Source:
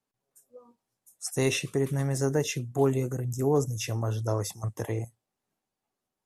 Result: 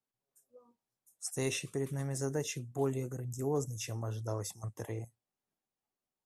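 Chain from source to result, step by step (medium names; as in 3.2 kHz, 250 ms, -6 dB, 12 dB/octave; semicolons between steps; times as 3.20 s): dynamic bell 8.2 kHz, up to +5 dB, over -51 dBFS, Q 1.3; trim -8.5 dB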